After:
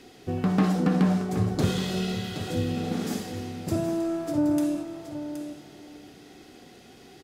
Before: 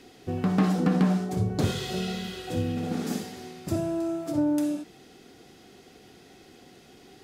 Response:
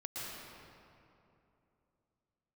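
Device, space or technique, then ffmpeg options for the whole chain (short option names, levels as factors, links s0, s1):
saturated reverb return: -filter_complex "[0:a]aecho=1:1:772:0.316,asplit=2[s0][s1];[1:a]atrim=start_sample=2205[s2];[s1][s2]afir=irnorm=-1:irlink=0,asoftclip=type=tanh:threshold=0.0335,volume=0.316[s3];[s0][s3]amix=inputs=2:normalize=0"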